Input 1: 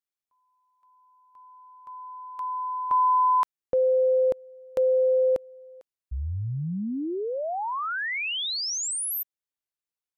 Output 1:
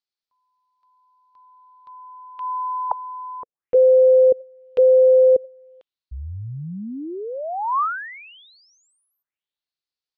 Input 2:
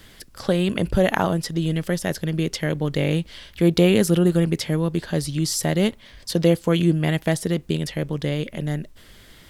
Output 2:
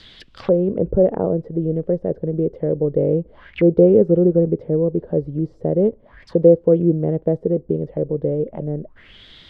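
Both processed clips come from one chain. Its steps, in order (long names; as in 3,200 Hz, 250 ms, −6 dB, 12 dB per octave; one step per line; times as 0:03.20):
envelope-controlled low-pass 480–4,500 Hz down, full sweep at −23 dBFS
level −1.5 dB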